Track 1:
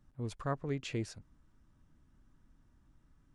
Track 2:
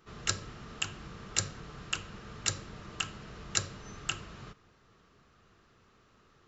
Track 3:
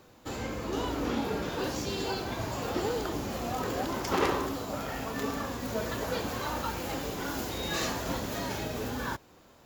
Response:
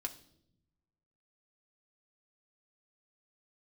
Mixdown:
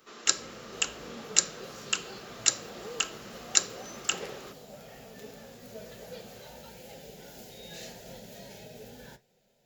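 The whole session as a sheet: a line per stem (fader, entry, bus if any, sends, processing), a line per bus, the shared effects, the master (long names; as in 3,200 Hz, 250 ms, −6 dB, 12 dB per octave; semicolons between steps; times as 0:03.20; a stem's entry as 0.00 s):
muted
+1.5 dB, 0.00 s, no send, Butterworth high-pass 240 Hz 36 dB per octave; high-shelf EQ 5,100 Hz +10.5 dB
−5.5 dB, 0.00 s, no send, flanger 1.6 Hz, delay 7.6 ms, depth 7.5 ms, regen −63%; phaser with its sweep stopped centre 300 Hz, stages 6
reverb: not used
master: no processing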